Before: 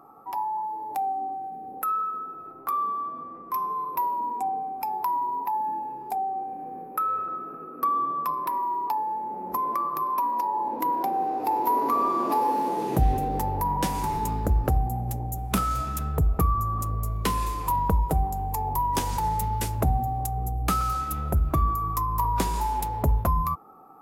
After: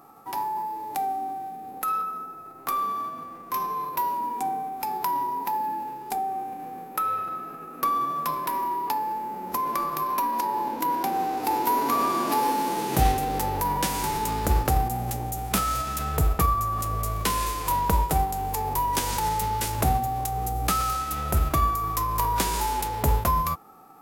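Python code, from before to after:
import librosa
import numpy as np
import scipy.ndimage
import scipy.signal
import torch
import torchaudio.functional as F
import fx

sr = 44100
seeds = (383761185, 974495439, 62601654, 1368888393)

y = fx.envelope_flatten(x, sr, power=0.6)
y = fx.dynamic_eq(y, sr, hz=3000.0, q=0.71, threshold_db=-48.0, ratio=4.0, max_db=-4, at=(2.01, 2.66))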